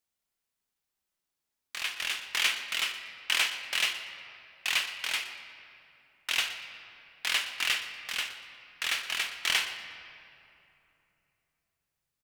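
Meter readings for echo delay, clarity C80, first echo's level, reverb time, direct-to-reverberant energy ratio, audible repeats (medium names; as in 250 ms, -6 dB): 119 ms, 8.5 dB, -15.5 dB, 2.9 s, 6.0 dB, 1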